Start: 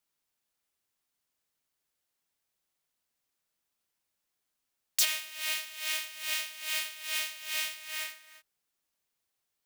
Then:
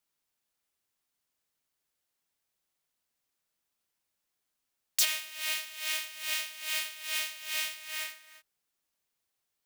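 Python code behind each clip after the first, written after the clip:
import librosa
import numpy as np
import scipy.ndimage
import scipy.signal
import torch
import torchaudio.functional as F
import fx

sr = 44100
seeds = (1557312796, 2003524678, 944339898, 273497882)

y = x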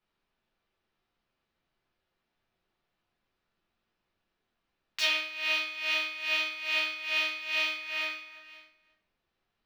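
y = fx.air_absorb(x, sr, metres=280.0)
y = y + 10.0 ** (-18.5 / 20.0) * np.pad(y, (int(528 * sr / 1000.0), 0))[:len(y)]
y = fx.room_shoebox(y, sr, seeds[0], volume_m3=45.0, walls='mixed', distance_m=1.1)
y = y * 10.0 ** (4.0 / 20.0)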